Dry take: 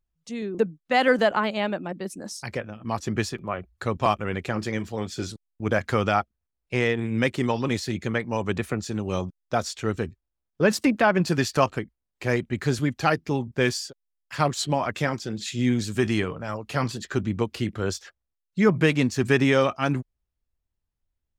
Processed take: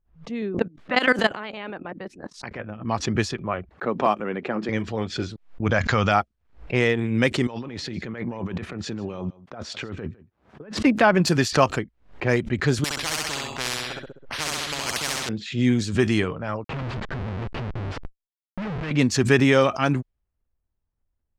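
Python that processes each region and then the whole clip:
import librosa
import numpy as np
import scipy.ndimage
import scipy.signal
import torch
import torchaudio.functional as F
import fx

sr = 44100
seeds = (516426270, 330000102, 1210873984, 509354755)

y = fx.spec_clip(x, sr, under_db=12, at=(0.52, 2.59), fade=0.02)
y = fx.level_steps(y, sr, step_db=18, at=(0.52, 2.59), fade=0.02)
y = fx.chain(y, sr, fx.highpass(hz=180.0, slope=24),
    fx.high_shelf(hz=2400.0, db=-11.5), at=(3.69, 4.69))
y = fx.chain(y, sr, fx.brickwall_lowpass(high_hz=7400.0),
    fx.peak_eq(hz=360.0, db=-7.0, octaves=1.2),
    fx.env_flatten(amount_pct=70), at=(5.66, 6.12))
y = fx.chain(y, sr, fx.highpass(hz=110.0, slope=12),
    fx.over_compress(threshold_db=-35.0, ratio=-1.0),
    fx.echo_single(ms=155, db=-20.0), at=(7.47, 10.78))
y = fx.chain(y, sr, fx.echo_feedback(ms=65, feedback_pct=38, wet_db=-3.5),
    fx.resample_bad(factor=6, down='filtered', up='hold'),
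    fx.spectral_comp(ratio=10.0), at=(12.84, 15.29))
y = fx.chain(y, sr, fx.peak_eq(hz=600.0, db=-12.5, octaves=2.7),
    fx.schmitt(flips_db=-38.5),
    fx.resample_linear(factor=3), at=(16.64, 18.91))
y = fx.env_lowpass(y, sr, base_hz=1500.0, full_db=-18.0)
y = fx.pre_swell(y, sr, db_per_s=150.0)
y = y * librosa.db_to_amplitude(2.5)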